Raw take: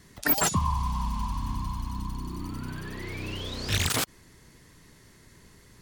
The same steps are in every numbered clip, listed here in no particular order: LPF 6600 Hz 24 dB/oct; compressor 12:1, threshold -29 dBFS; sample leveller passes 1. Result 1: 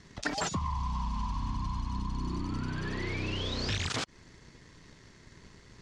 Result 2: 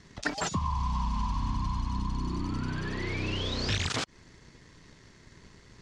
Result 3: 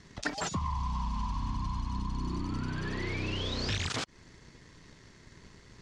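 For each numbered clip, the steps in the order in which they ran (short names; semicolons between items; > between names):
sample leveller > LPF > compressor; compressor > sample leveller > LPF; sample leveller > compressor > LPF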